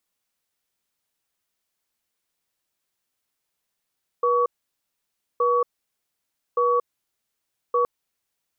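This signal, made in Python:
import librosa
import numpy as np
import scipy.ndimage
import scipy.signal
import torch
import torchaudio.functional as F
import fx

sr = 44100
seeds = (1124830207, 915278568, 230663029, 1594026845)

y = fx.cadence(sr, length_s=3.62, low_hz=484.0, high_hz=1130.0, on_s=0.23, off_s=0.94, level_db=-20.0)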